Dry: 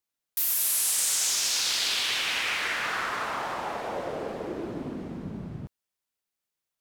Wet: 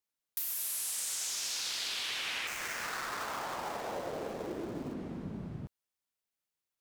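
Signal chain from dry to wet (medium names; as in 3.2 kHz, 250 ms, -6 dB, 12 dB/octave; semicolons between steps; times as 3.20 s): 2.47–4.94 s: dead-time distortion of 0.11 ms; compression, threshold -29 dBFS, peak gain reduction 7 dB; trim -4 dB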